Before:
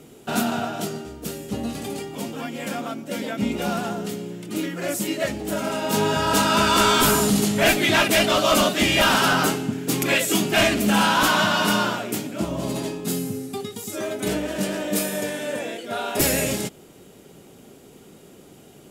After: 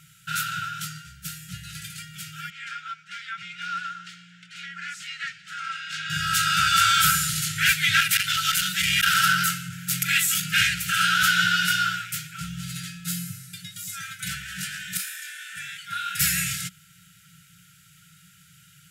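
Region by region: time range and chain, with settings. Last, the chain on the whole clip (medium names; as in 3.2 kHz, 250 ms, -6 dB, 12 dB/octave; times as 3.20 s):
2.50–6.10 s: high-pass 380 Hz + distance through air 130 m
8.00–10.46 s: treble shelf 8.6 kHz +6.5 dB + transformer saturation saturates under 720 Hz
14.97–15.57 s: elliptic high-pass 500 Hz, stop band 50 dB + detune thickener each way 47 cents
whole clip: high-pass 130 Hz 6 dB/octave; peaking EQ 1.3 kHz +5 dB 0.44 oct; FFT band-reject 190–1300 Hz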